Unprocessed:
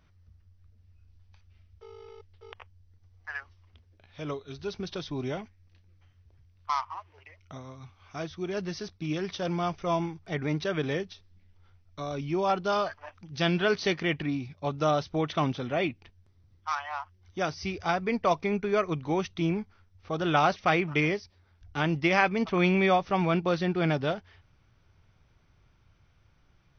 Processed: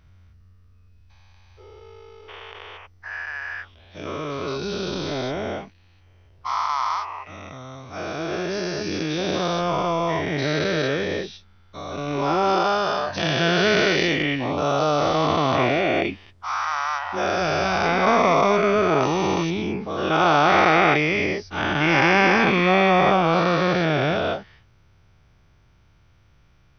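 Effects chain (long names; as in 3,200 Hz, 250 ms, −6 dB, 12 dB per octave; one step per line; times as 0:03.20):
every bin's largest magnitude spread in time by 480 ms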